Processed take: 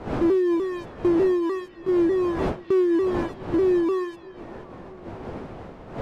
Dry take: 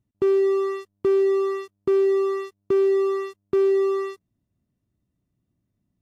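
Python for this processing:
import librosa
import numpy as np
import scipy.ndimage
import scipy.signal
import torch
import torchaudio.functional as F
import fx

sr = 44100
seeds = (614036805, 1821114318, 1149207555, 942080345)

y = fx.pitch_ramps(x, sr, semitones=-3.0, every_ms=299)
y = fx.dmg_wind(y, sr, seeds[0], corner_hz=570.0, level_db=-35.0)
y = fx.echo_stepped(y, sr, ms=254, hz=3500.0, octaves=-0.7, feedback_pct=70, wet_db=-11)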